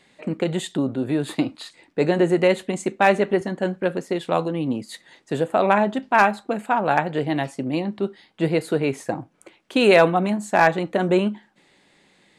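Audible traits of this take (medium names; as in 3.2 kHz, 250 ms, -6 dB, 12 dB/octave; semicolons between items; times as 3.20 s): noise floor -60 dBFS; spectral tilt -4.5 dB/octave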